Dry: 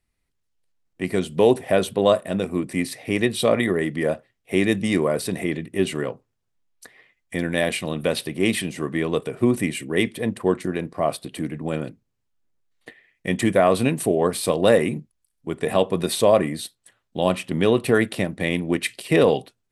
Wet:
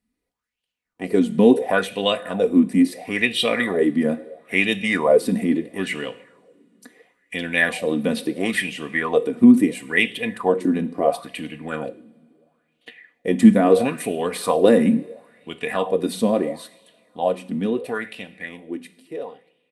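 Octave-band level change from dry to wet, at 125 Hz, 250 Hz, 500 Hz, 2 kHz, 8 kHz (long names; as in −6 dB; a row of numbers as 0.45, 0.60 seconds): −3.5, +4.5, −0.5, +4.0, −4.5 decibels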